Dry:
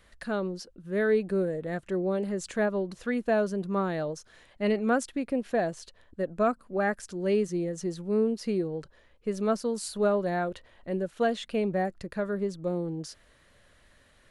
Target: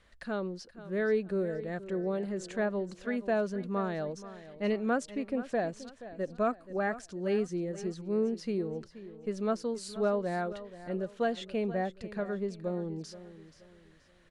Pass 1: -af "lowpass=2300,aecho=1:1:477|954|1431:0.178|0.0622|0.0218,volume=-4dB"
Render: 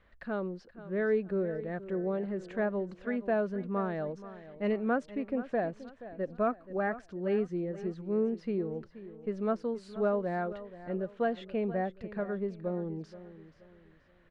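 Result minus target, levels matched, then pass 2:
8,000 Hz band −17.5 dB
-af "lowpass=7500,aecho=1:1:477|954|1431:0.178|0.0622|0.0218,volume=-4dB"

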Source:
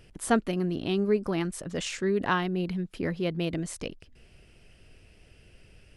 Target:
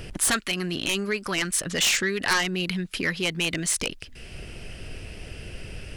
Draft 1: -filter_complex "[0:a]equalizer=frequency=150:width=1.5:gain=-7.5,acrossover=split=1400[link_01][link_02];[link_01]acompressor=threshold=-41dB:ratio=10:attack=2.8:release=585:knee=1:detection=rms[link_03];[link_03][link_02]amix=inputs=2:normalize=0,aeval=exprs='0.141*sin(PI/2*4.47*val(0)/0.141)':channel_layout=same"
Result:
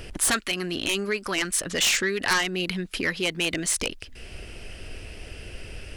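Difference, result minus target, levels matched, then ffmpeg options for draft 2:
125 Hz band −3.0 dB
-filter_complex "[0:a]acrossover=split=1400[link_01][link_02];[link_01]acompressor=threshold=-41dB:ratio=10:attack=2.8:release=585:knee=1:detection=rms[link_03];[link_03][link_02]amix=inputs=2:normalize=0,aeval=exprs='0.141*sin(PI/2*4.47*val(0)/0.141)':channel_layout=same"

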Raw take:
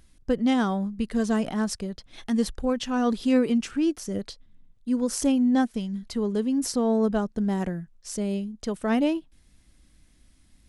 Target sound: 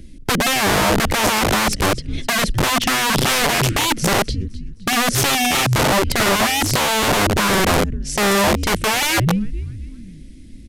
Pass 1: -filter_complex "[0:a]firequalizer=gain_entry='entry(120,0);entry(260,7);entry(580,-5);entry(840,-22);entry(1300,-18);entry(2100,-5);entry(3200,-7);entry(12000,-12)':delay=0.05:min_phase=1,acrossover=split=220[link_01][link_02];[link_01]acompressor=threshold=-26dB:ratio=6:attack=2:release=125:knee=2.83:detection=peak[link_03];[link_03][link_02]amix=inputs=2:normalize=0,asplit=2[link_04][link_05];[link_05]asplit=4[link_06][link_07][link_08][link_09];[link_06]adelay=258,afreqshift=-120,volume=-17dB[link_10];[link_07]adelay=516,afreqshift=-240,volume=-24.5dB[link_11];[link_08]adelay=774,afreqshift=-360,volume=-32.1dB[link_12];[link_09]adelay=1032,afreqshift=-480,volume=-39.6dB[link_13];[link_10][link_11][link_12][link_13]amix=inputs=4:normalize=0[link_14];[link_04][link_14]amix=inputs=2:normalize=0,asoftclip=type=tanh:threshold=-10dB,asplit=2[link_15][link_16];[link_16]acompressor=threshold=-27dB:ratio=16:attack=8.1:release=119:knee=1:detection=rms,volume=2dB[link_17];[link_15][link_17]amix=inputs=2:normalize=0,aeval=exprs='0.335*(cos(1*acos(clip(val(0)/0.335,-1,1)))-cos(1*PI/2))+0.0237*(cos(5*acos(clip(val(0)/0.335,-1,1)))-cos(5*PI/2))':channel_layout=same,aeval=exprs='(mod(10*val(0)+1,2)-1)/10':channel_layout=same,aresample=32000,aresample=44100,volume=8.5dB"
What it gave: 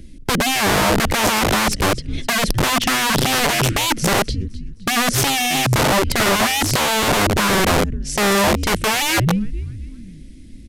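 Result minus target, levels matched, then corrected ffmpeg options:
soft clipping: distortion +13 dB
-filter_complex "[0:a]firequalizer=gain_entry='entry(120,0);entry(260,7);entry(580,-5);entry(840,-22);entry(1300,-18);entry(2100,-5);entry(3200,-7);entry(12000,-12)':delay=0.05:min_phase=1,acrossover=split=220[link_01][link_02];[link_01]acompressor=threshold=-26dB:ratio=6:attack=2:release=125:knee=2.83:detection=peak[link_03];[link_03][link_02]amix=inputs=2:normalize=0,asplit=2[link_04][link_05];[link_05]asplit=4[link_06][link_07][link_08][link_09];[link_06]adelay=258,afreqshift=-120,volume=-17dB[link_10];[link_07]adelay=516,afreqshift=-240,volume=-24.5dB[link_11];[link_08]adelay=774,afreqshift=-360,volume=-32.1dB[link_12];[link_09]adelay=1032,afreqshift=-480,volume=-39.6dB[link_13];[link_10][link_11][link_12][link_13]amix=inputs=4:normalize=0[link_14];[link_04][link_14]amix=inputs=2:normalize=0,asoftclip=type=tanh:threshold=-3dB,asplit=2[link_15][link_16];[link_16]acompressor=threshold=-27dB:ratio=16:attack=8.1:release=119:knee=1:detection=rms,volume=2dB[link_17];[link_15][link_17]amix=inputs=2:normalize=0,aeval=exprs='0.335*(cos(1*acos(clip(val(0)/0.335,-1,1)))-cos(1*PI/2))+0.0237*(cos(5*acos(clip(val(0)/0.335,-1,1)))-cos(5*PI/2))':channel_layout=same,aeval=exprs='(mod(10*val(0)+1,2)-1)/10':channel_layout=same,aresample=32000,aresample=44100,volume=8.5dB"

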